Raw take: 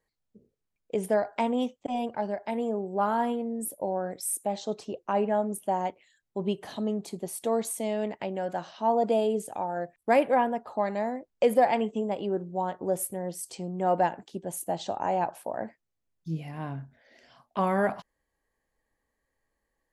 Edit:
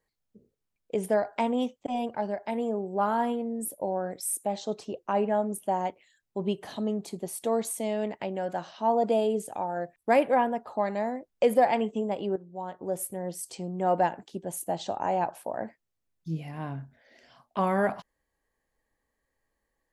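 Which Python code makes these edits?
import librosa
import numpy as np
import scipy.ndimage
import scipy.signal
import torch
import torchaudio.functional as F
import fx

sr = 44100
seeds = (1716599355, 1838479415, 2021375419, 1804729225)

y = fx.edit(x, sr, fx.fade_in_from(start_s=12.36, length_s=0.95, floor_db=-12.0), tone=tone)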